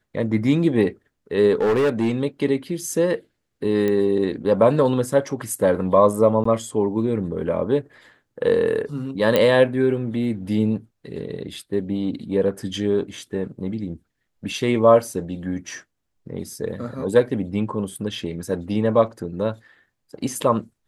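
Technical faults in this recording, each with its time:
1.61–2.22 clipped -15.5 dBFS
3.88 pop -12 dBFS
6.44–6.45 gap 14 ms
9.36 pop -5 dBFS

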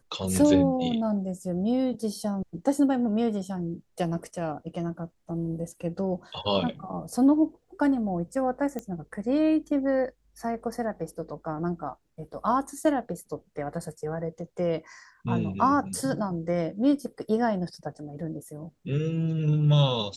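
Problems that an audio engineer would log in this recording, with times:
8.79 pop -20 dBFS

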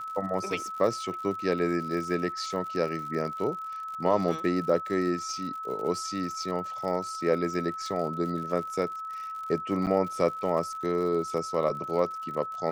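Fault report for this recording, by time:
crackle 79/s -37 dBFS
tone 1300 Hz -34 dBFS
9.86–9.87 gap 8.7 ms

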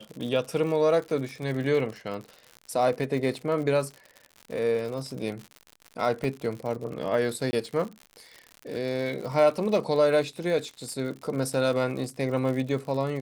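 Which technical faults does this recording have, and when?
crackle 94/s -34 dBFS
6.24 gap 2.7 ms
7.51–7.53 gap 20 ms

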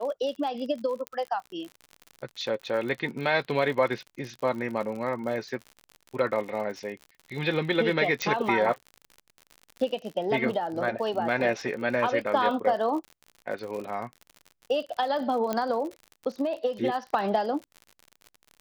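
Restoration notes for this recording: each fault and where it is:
crackle 57/s -35 dBFS
1.07 pop -19 dBFS
8.22 pop -12 dBFS
15.53 pop -14 dBFS

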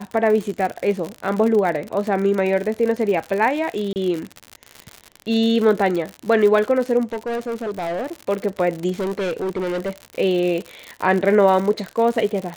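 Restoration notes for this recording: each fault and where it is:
crackle 87/s -24 dBFS
3.93–3.96 gap 29 ms
7.13–8.15 clipped -22 dBFS
8.99–9.9 clipped -20.5 dBFS

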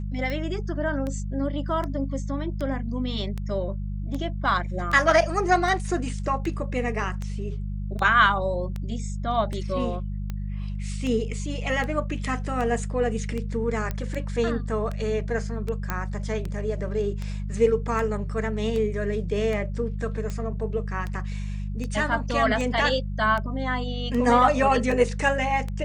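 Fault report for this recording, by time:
hum 50 Hz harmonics 4 -30 dBFS
tick 78 rpm -19 dBFS
13.91 pop -16 dBFS
15.9 pop -12 dBFS

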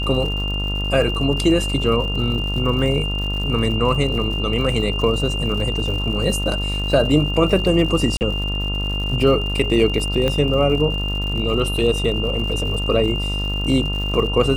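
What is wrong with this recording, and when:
buzz 50 Hz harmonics 28 -24 dBFS
crackle 130/s -29 dBFS
tone 2800 Hz -25 dBFS
8.17–8.21 gap 39 ms
10.28 pop -9 dBFS

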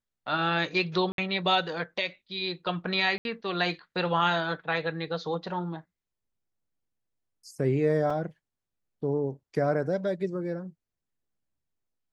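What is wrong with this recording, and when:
1.12–1.18 gap 62 ms
3.18–3.25 gap 71 ms
8.1 gap 4.6 ms

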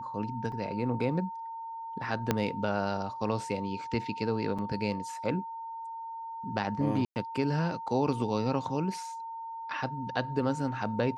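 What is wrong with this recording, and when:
tone 910 Hz -37 dBFS
0.52 gap 3.2 ms
2.31 pop -11 dBFS
4.58–4.59 gap 6.3 ms
7.05–7.16 gap 0.109 s

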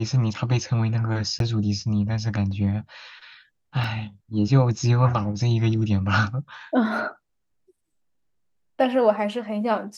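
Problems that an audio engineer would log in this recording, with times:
1.39–1.4 gap 12 ms
3.84 gap 3.1 ms

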